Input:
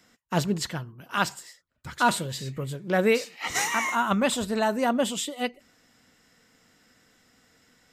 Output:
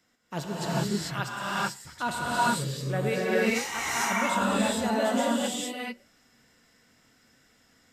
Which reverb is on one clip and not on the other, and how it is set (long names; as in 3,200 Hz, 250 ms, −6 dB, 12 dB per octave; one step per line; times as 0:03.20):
reverb whose tail is shaped and stops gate 470 ms rising, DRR −7.5 dB
level −9 dB